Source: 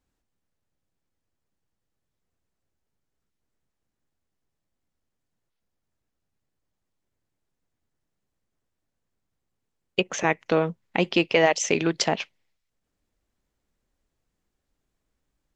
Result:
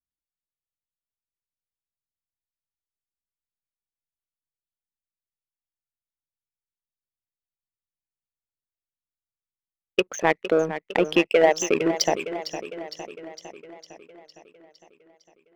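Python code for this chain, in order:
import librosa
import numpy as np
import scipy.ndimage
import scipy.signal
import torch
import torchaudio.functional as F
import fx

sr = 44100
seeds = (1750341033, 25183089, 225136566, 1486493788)

y = fx.envelope_sharpen(x, sr, power=2.0)
y = fx.power_curve(y, sr, exponent=1.4)
y = fx.echo_warbled(y, sr, ms=457, feedback_pct=60, rate_hz=2.8, cents=78, wet_db=-11.5)
y = F.gain(torch.from_numpy(y), 4.5).numpy()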